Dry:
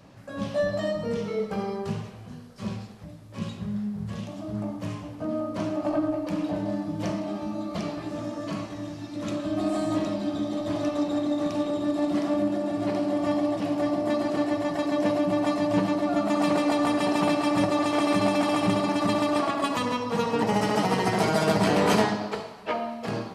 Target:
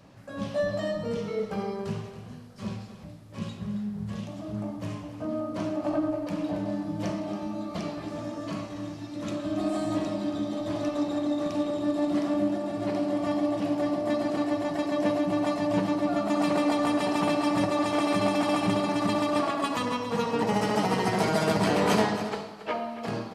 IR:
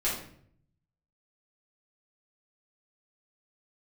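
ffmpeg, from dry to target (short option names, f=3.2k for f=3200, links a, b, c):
-af "aecho=1:1:277:0.224,volume=-2dB"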